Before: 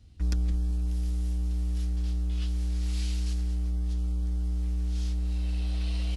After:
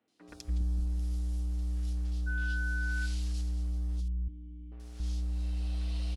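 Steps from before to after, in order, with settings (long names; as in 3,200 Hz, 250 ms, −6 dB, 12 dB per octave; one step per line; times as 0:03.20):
0:02.26–0:03.05: steady tone 1,500 Hz −31 dBFS
0:04.00–0:04.72: formant resonators in series i
three-band delay without the direct sound mids, highs, lows 80/280 ms, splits 290/2,400 Hz
level −4 dB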